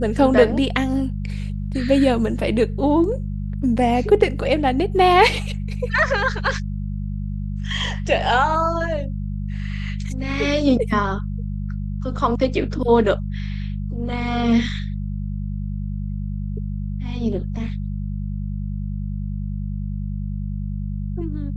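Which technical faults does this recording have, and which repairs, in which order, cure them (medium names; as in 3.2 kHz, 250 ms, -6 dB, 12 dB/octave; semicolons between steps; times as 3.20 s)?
hum 50 Hz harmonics 4 -26 dBFS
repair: de-hum 50 Hz, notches 4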